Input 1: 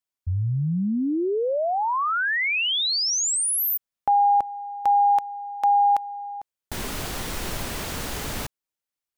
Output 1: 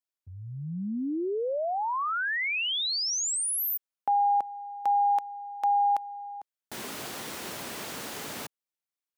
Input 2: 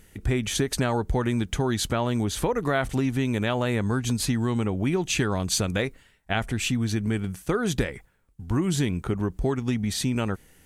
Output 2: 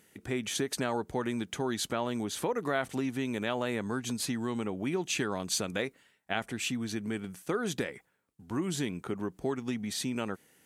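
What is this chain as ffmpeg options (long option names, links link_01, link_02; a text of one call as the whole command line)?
ffmpeg -i in.wav -af "highpass=200,volume=-5.5dB" out.wav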